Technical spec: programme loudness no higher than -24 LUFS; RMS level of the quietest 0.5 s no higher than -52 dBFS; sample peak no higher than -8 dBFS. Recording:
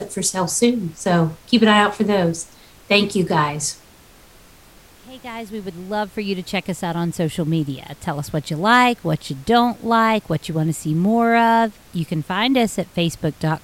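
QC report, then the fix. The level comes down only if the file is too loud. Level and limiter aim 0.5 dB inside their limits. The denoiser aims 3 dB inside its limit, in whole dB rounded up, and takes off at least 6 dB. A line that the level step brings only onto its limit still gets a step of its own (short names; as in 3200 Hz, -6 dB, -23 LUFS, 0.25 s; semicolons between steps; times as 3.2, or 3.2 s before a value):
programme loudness -19.5 LUFS: fail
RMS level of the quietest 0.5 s -48 dBFS: fail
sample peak -3.0 dBFS: fail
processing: gain -5 dB; limiter -8.5 dBFS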